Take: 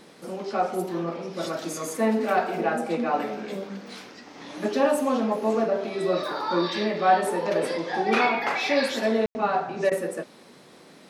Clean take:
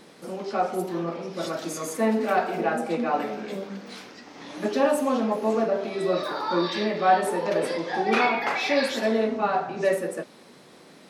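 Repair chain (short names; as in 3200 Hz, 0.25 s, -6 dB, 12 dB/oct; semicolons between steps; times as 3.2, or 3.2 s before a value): room tone fill 9.26–9.35; interpolate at 9.9, 13 ms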